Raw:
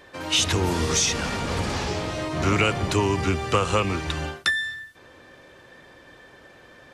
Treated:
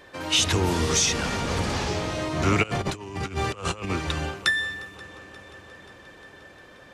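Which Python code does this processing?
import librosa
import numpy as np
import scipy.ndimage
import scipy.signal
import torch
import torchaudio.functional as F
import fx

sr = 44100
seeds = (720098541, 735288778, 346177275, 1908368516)

y = fx.echo_heads(x, sr, ms=177, heads='second and third', feedback_pct=70, wet_db=-24)
y = fx.over_compress(y, sr, threshold_db=-28.0, ratio=-0.5, at=(2.62, 3.89), fade=0.02)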